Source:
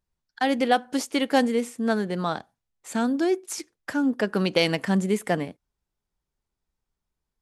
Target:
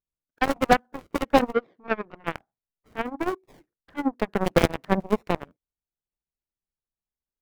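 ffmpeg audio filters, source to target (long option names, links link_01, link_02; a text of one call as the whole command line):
ffmpeg -i in.wav -filter_complex "[0:a]tremolo=f=14:d=0.38,acrossover=split=2000[link_01][link_02];[link_02]acrusher=samples=40:mix=1:aa=0.000001:lfo=1:lforange=24:lforate=1.1[link_03];[link_01][link_03]amix=inputs=2:normalize=0,asplit=3[link_04][link_05][link_06];[link_04]afade=type=out:start_time=1.52:duration=0.02[link_07];[link_05]highpass=230,equalizer=frequency=240:width_type=q:width=4:gain=-5,equalizer=frequency=420:width_type=q:width=4:gain=5,equalizer=frequency=860:width_type=q:width=4:gain=-9,equalizer=frequency=2600:width_type=q:width=4:gain=-7,lowpass=frequency=3800:width=0.5412,lowpass=frequency=3800:width=1.3066,afade=type=in:start_time=1.52:duration=0.02,afade=type=out:start_time=2.26:duration=0.02[link_08];[link_06]afade=type=in:start_time=2.26:duration=0.02[link_09];[link_07][link_08][link_09]amix=inputs=3:normalize=0,aeval=exprs='0.398*(cos(1*acos(clip(val(0)/0.398,-1,1)))-cos(1*PI/2))+0.0631*(cos(7*acos(clip(val(0)/0.398,-1,1)))-cos(7*PI/2))':channel_layout=same,volume=5dB" out.wav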